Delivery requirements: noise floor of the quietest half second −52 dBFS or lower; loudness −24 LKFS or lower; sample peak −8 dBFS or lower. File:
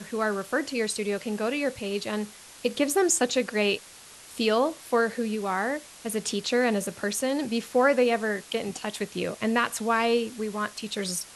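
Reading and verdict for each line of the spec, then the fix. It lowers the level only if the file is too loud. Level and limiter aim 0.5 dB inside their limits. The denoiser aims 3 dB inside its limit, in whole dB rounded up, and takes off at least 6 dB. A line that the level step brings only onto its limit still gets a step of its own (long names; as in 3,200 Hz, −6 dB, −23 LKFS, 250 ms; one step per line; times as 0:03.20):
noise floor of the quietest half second −48 dBFS: out of spec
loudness −27.0 LKFS: in spec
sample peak −9.0 dBFS: in spec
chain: broadband denoise 7 dB, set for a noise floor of −48 dBFS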